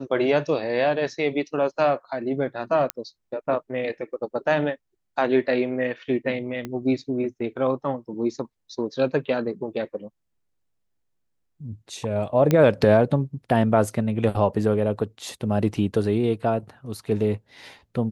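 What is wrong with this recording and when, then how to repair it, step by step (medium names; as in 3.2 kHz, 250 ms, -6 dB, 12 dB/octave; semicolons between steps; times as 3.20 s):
2.90 s: pop -8 dBFS
6.65 s: pop -18 dBFS
12.51 s: pop -8 dBFS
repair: de-click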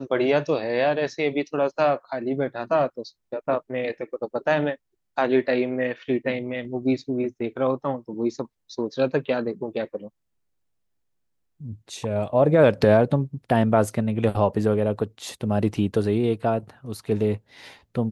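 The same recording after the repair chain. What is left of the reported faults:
6.65 s: pop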